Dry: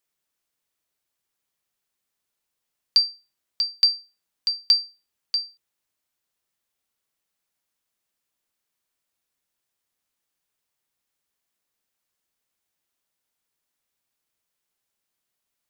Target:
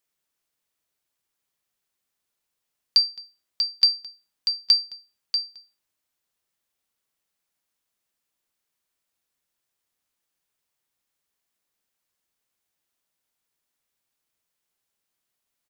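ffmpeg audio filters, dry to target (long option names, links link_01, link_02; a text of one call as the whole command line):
ffmpeg -i in.wav -filter_complex "[0:a]asplit=2[link_01][link_02];[link_02]adelay=215.7,volume=-20dB,highshelf=frequency=4000:gain=-4.85[link_03];[link_01][link_03]amix=inputs=2:normalize=0" out.wav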